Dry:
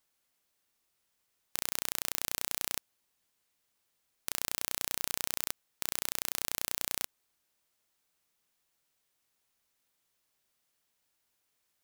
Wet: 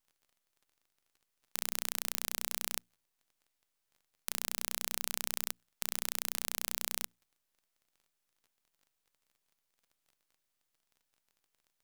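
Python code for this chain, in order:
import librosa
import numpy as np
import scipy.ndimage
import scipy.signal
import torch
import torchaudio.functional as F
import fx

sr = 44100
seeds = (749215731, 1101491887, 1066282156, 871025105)

y = fx.dmg_crackle(x, sr, seeds[0], per_s=47.0, level_db=-52.0)
y = fx.hum_notches(y, sr, base_hz=60, count=3)
y = np.maximum(y, 0.0)
y = F.gain(torch.from_numpy(y), -1.5).numpy()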